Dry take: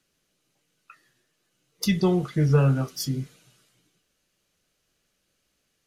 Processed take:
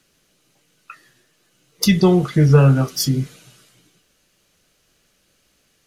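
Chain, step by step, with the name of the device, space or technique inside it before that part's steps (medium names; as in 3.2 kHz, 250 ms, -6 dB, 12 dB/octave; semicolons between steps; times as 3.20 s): parallel compression (in parallel at -3.5 dB: compression, threshold -30 dBFS, peak gain reduction 14.5 dB); on the sum: trim +6.5 dB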